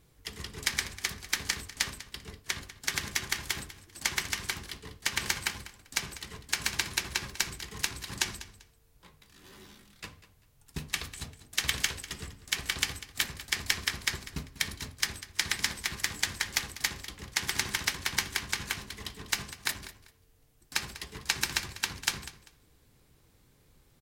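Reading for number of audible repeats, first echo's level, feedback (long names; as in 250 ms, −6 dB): 2, −16.0 dB, 24%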